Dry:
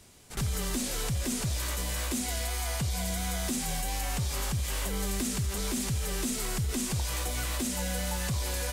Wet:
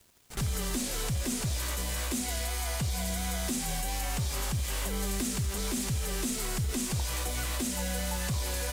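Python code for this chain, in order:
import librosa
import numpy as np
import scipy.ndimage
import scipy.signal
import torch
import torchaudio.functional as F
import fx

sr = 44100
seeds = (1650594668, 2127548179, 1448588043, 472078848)

y = fx.quant_dither(x, sr, seeds[0], bits=10, dither='triangular')
y = np.sign(y) * np.maximum(np.abs(y) - 10.0 ** (-54.0 / 20.0), 0.0)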